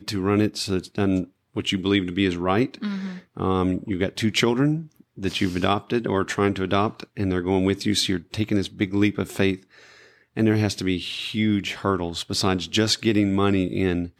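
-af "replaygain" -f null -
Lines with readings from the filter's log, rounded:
track_gain = +3.7 dB
track_peak = 0.373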